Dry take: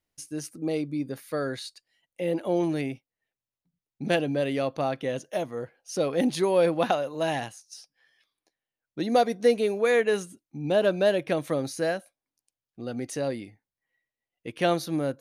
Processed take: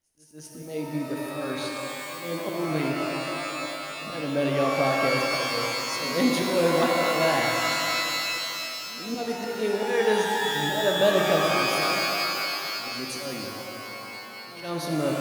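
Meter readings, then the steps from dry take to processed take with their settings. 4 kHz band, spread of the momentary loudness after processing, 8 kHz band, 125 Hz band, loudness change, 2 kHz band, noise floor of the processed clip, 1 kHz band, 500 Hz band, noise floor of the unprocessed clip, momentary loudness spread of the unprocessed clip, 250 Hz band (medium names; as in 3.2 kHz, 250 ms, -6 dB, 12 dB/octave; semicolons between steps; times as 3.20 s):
+10.5 dB, 12 LU, +7.5 dB, +1.0 dB, +1.5 dB, +8.0 dB, -41 dBFS, +5.0 dB, -0.5 dB, under -85 dBFS, 15 LU, +0.5 dB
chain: slow attack 245 ms; reverse echo 159 ms -16.5 dB; pitch-shifted reverb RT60 3.4 s, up +12 st, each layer -2 dB, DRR 0 dB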